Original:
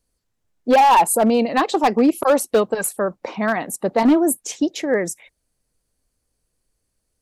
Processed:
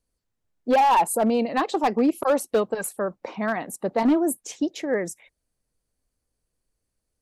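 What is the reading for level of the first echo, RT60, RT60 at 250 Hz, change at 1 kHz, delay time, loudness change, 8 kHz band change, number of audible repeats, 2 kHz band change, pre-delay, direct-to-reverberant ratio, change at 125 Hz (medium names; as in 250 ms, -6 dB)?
no echo, no reverb, no reverb, -5.5 dB, no echo, -5.5 dB, -8.0 dB, no echo, -6.0 dB, no reverb, no reverb, -5.0 dB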